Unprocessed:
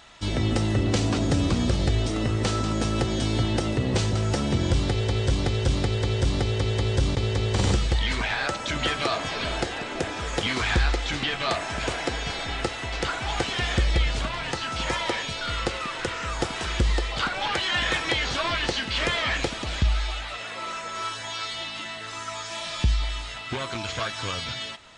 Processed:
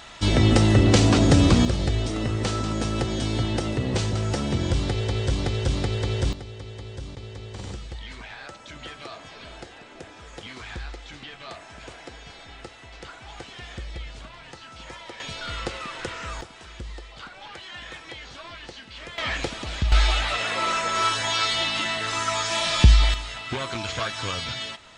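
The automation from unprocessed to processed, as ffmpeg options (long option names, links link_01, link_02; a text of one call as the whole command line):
ffmpeg -i in.wav -af "asetnsamples=nb_out_samples=441:pad=0,asendcmd='1.65 volume volume -1dB;6.33 volume volume -13.5dB;15.2 volume volume -3.5dB;16.41 volume volume -14.5dB;19.18 volume volume -2dB;19.92 volume volume 8.5dB;23.14 volume volume 1dB',volume=6.5dB" out.wav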